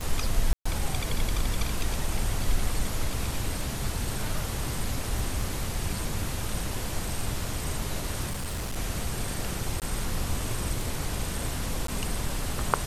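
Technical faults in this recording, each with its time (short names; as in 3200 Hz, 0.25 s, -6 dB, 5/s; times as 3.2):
tick 33 1/3 rpm
0.53–0.66 gap 0.125 s
5.19 gap 2.2 ms
8.29–8.77 clipped -28 dBFS
9.8–9.82 gap 18 ms
11.87–11.88 gap 13 ms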